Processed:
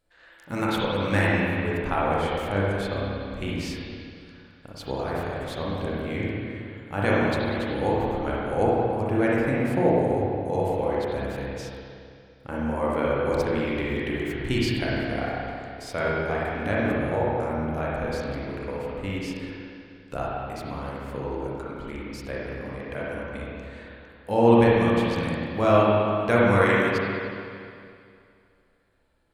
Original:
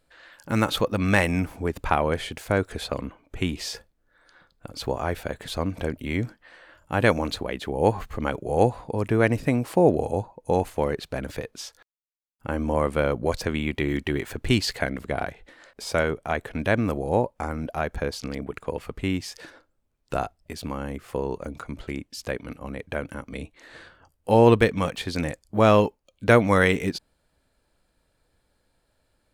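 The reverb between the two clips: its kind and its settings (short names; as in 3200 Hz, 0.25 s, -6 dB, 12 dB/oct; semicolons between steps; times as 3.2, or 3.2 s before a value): spring tank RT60 2.4 s, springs 30/51/57 ms, chirp 45 ms, DRR -6.5 dB; gain -7.5 dB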